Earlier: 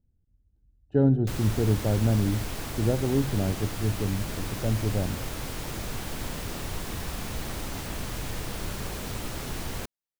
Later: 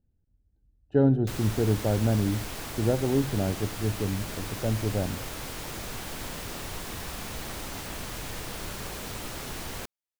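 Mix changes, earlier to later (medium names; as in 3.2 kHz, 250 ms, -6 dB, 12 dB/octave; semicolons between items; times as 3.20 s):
speech +3.5 dB; master: add bass shelf 310 Hz -6 dB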